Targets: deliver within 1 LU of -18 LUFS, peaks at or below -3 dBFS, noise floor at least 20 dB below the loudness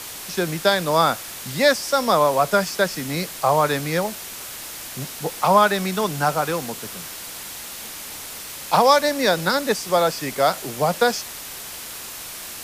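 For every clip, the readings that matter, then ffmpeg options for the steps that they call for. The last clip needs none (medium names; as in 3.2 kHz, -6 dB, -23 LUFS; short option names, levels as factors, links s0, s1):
noise floor -35 dBFS; noise floor target -41 dBFS; loudness -20.5 LUFS; peak level -2.5 dBFS; loudness target -18.0 LUFS
-> -af "afftdn=nr=6:nf=-35"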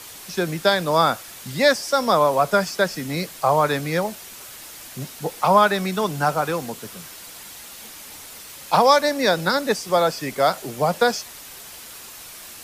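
noise floor -40 dBFS; noise floor target -41 dBFS
-> -af "afftdn=nr=6:nf=-40"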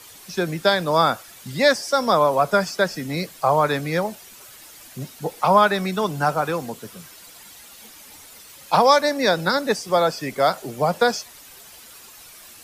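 noise floor -45 dBFS; loudness -20.5 LUFS; peak level -2.5 dBFS; loudness target -18.0 LUFS
-> -af "volume=1.33,alimiter=limit=0.708:level=0:latency=1"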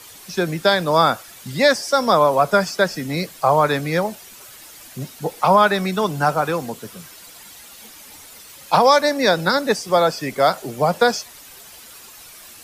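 loudness -18.5 LUFS; peak level -3.0 dBFS; noise floor -42 dBFS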